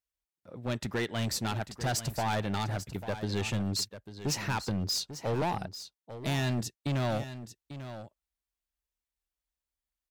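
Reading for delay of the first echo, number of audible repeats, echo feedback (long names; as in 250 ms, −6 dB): 844 ms, 1, repeats not evenly spaced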